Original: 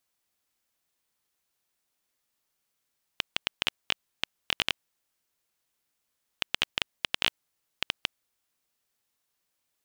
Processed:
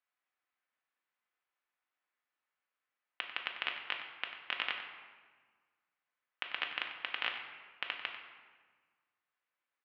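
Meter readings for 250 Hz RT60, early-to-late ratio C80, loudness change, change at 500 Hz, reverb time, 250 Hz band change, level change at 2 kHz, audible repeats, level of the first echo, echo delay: 1.8 s, 6.5 dB, -7.0 dB, -8.0 dB, 1.5 s, -12.5 dB, -3.5 dB, 1, -11.5 dB, 94 ms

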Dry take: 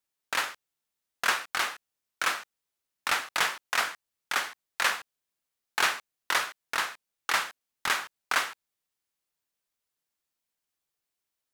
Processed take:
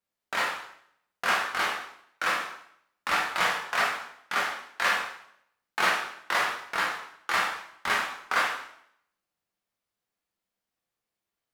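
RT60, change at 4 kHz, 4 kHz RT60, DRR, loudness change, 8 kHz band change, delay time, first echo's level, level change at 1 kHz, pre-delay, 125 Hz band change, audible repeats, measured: 0.70 s, -1.0 dB, 0.65 s, -3.0 dB, +1.5 dB, -4.0 dB, no echo, no echo, +3.5 dB, 5 ms, no reading, no echo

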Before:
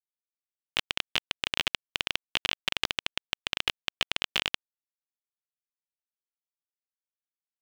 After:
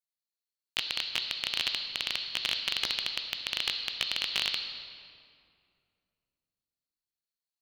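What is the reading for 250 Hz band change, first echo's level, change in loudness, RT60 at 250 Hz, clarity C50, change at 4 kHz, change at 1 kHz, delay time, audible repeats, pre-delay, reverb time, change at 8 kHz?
-6.5 dB, no echo, 0.0 dB, 3.0 s, 7.5 dB, +0.5 dB, -5.5 dB, no echo, no echo, 11 ms, 2.4 s, -0.5 dB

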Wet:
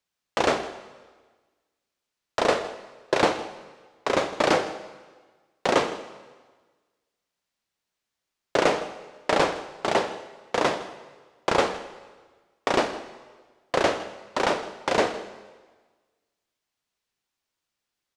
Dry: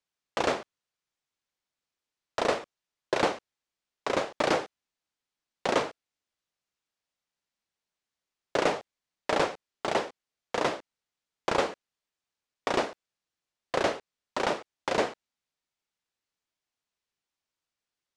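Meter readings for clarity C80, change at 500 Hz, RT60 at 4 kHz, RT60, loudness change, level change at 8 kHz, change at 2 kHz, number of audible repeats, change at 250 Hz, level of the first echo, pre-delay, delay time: 12.5 dB, +5.0 dB, 1.3 s, 1.4 s, +4.5 dB, +5.0 dB, +5.0 dB, 1, +5.0 dB, -17.5 dB, 5 ms, 160 ms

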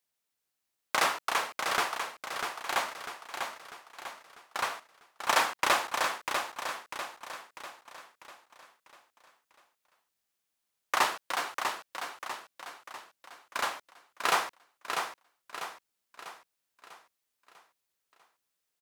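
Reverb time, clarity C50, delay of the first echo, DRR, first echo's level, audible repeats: no reverb, no reverb, 646 ms, no reverb, -6.0 dB, 5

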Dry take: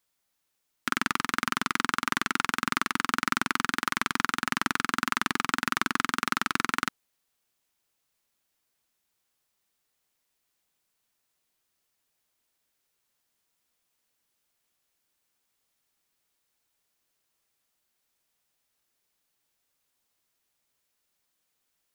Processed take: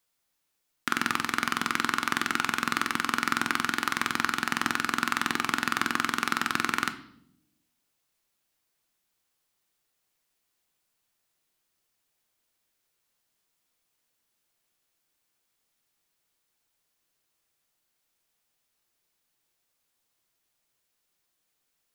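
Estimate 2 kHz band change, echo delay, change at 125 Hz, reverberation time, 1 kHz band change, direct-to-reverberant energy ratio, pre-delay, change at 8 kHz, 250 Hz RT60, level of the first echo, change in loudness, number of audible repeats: +0.5 dB, no echo, -1.0 dB, 0.75 s, 0.0 dB, 9.0 dB, 3 ms, 0.0 dB, 1.2 s, no echo, +0.5 dB, no echo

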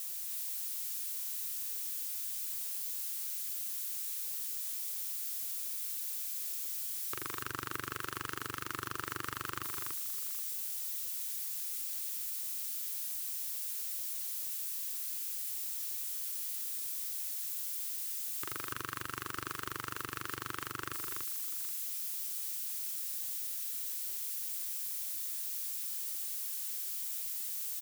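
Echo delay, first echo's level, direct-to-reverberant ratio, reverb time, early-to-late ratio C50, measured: 117 ms, -18.0 dB, no reverb, no reverb, no reverb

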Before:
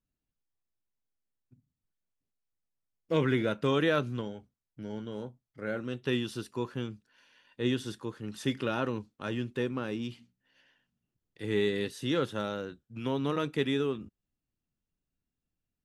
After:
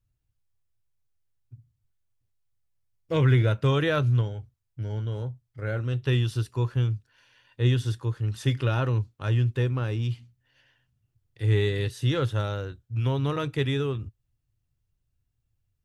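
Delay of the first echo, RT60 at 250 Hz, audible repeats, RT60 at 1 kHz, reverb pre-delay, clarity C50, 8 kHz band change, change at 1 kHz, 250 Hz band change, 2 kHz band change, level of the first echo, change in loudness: no echo, no reverb, no echo, no reverb, no reverb, no reverb, no reading, +2.5 dB, 0.0 dB, +2.5 dB, no echo, +6.0 dB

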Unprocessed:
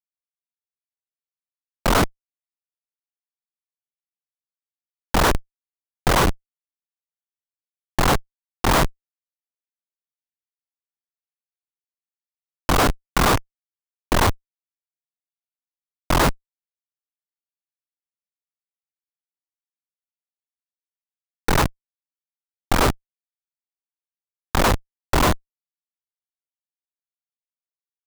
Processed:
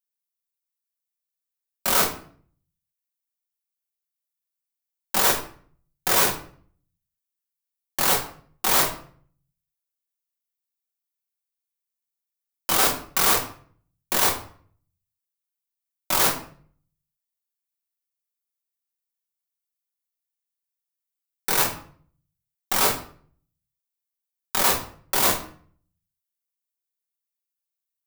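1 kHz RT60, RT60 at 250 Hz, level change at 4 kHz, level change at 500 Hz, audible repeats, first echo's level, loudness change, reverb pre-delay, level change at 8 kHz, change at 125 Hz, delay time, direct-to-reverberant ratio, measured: 0.50 s, 0.60 s, +1.0 dB, -6.0 dB, no echo, no echo, +0.5 dB, 5 ms, +5.5 dB, -15.0 dB, no echo, -2.5 dB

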